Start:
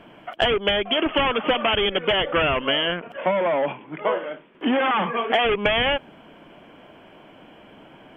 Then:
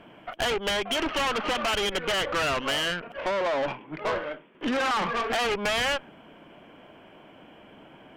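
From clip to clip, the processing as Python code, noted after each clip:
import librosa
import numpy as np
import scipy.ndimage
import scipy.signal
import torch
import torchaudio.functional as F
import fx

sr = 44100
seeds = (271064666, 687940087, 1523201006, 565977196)

y = fx.dynamic_eq(x, sr, hz=1500.0, q=1.3, threshold_db=-36.0, ratio=4.0, max_db=5)
y = fx.tube_stage(y, sr, drive_db=23.0, bias=0.6)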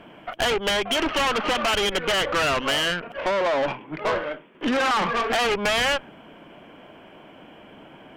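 y = fx.hum_notches(x, sr, base_hz=60, count=2)
y = F.gain(torch.from_numpy(y), 4.0).numpy()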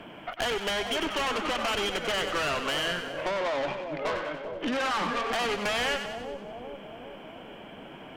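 y = fx.echo_split(x, sr, split_hz=780.0, low_ms=395, high_ms=94, feedback_pct=52, wet_db=-8)
y = fx.band_squash(y, sr, depth_pct=40)
y = F.gain(torch.from_numpy(y), -7.0).numpy()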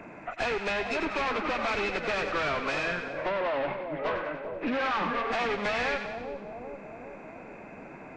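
y = fx.freq_compress(x, sr, knee_hz=1700.0, ratio=1.5)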